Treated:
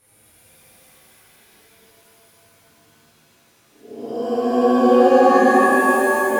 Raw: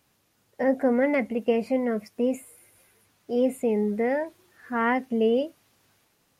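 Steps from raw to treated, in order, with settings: vibrato 1.3 Hz 26 cents; Paulstretch 7.1×, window 0.10 s, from 2.73 s; pitch-shifted reverb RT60 3 s, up +7 st, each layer -2 dB, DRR -10.5 dB; trim -4 dB

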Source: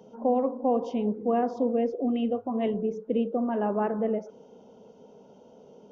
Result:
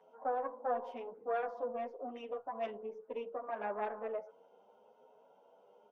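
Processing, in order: tracing distortion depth 0.095 ms; three-band isolator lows -24 dB, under 590 Hz, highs -20 dB, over 2.5 kHz; endless flanger 9 ms +0.96 Hz

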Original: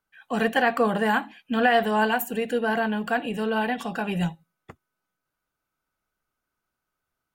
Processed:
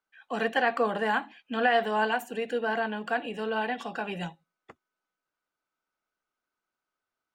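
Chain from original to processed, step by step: three-band isolator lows -13 dB, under 240 Hz, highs -15 dB, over 7.5 kHz; trim -3.5 dB

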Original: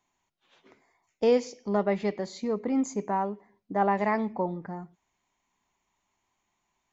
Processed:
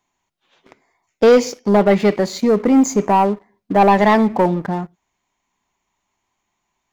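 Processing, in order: waveshaping leveller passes 2; trim +8 dB

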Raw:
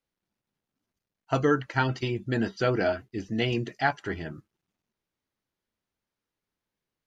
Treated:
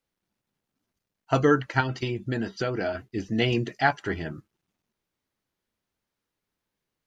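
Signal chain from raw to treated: 1.80–2.95 s: compression 5:1, threshold -28 dBFS, peak gain reduction 8 dB; trim +3 dB

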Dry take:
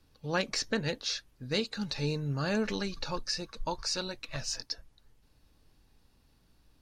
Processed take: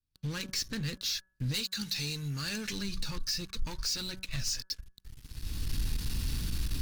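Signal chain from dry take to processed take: recorder AGC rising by 30 dB/s; 1.54–2.73 s: tilt EQ +2.5 dB/octave; waveshaping leveller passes 5; amplifier tone stack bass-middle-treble 6-0-2; de-hum 188.2 Hz, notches 9

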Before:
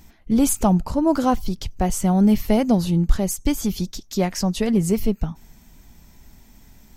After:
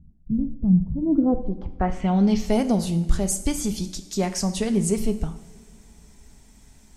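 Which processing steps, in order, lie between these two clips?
low-pass sweep 160 Hz -> 9.1 kHz, 0.91–2.56 s; two-slope reverb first 0.66 s, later 3.2 s, from -18 dB, DRR 8.5 dB; trim -3.5 dB

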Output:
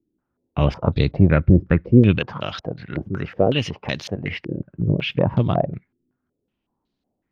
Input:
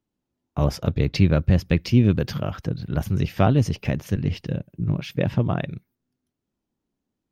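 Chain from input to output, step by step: 2.18–4.59 s: tilt EQ +3 dB/octave; step-sequenced low-pass 5.4 Hz 340–4100 Hz; trim +2.5 dB

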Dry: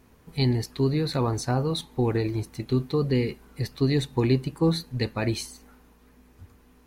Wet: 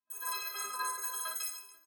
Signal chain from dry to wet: partials quantised in pitch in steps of 4 st; frequency weighting ITU-R 468; level-controlled noise filter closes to 330 Hz, open at -17 dBFS; peaking EQ 9.6 kHz +13 dB 0.25 oct; comb 2.8 ms, depth 42%; compression, threshold -27 dBFS, peak gain reduction 18 dB; peak limiter -23.5 dBFS, peak gain reduction 9 dB; spring tank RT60 2.1 s, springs 47 ms, chirp 55 ms, DRR -2 dB; wide varispeed 3.68×; reverse bouncing-ball echo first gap 60 ms, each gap 1.5×, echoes 5; three bands expanded up and down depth 70%; trim -7 dB

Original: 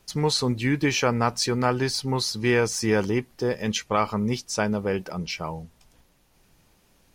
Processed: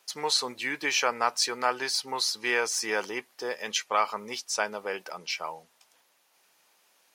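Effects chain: high-pass 690 Hz 12 dB/octave

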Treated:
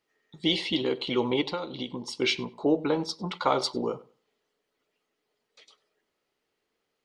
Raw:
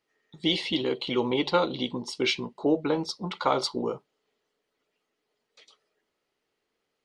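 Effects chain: 1.41–2.22 s: compression 6:1, threshold -30 dBFS, peak gain reduction 11.5 dB; on a send: filtered feedback delay 98 ms, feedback 20%, low-pass 3.8 kHz, level -19.5 dB

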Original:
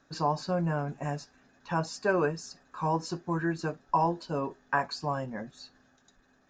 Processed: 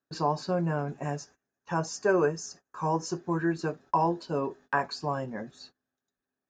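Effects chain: high-pass 59 Hz; peaking EQ 390 Hz +5.5 dB 0.5 oct; gate -51 dBFS, range -24 dB; 1.17–3.18 s: graphic EQ with 31 bands 250 Hz -5 dB, 2.5 kHz -3 dB, 4 kHz -9 dB, 6.3 kHz +8 dB

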